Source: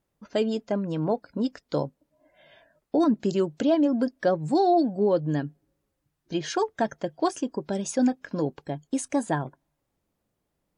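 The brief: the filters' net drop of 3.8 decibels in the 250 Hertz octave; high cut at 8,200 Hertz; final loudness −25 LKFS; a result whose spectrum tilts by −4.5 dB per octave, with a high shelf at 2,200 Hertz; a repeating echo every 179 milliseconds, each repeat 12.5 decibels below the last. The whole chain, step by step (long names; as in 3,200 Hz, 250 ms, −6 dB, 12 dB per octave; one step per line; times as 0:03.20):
low-pass filter 8,200 Hz
parametric band 250 Hz −5 dB
high-shelf EQ 2,200 Hz +8 dB
repeating echo 179 ms, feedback 24%, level −12.5 dB
level +2.5 dB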